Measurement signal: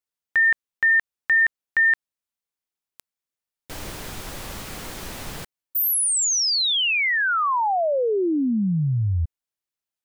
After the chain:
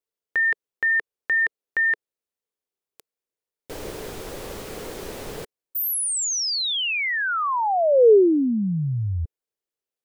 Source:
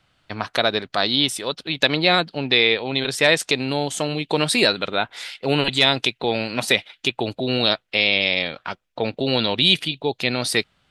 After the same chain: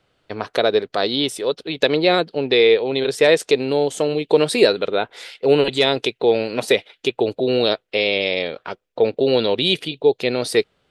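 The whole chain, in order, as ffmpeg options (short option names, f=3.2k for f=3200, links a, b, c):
-af "equalizer=f=440:t=o:w=0.91:g=13.5,volume=-3.5dB"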